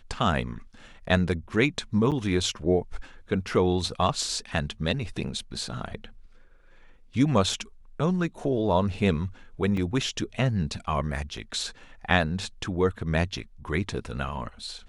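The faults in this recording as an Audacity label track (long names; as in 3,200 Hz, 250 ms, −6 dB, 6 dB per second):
2.110000	2.120000	drop-out 7.7 ms
9.770000	9.770000	drop-out 3.7 ms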